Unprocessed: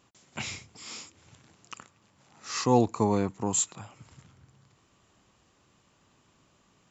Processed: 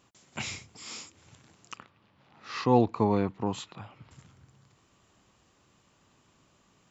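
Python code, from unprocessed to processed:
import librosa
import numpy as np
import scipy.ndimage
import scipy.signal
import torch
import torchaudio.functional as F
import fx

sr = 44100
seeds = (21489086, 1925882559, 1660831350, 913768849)

y = fx.lowpass(x, sr, hz=4100.0, slope=24, at=(1.76, 4.11))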